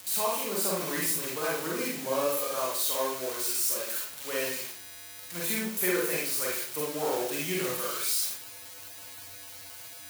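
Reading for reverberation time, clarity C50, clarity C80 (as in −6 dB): 0.55 s, 0.0 dB, 6.0 dB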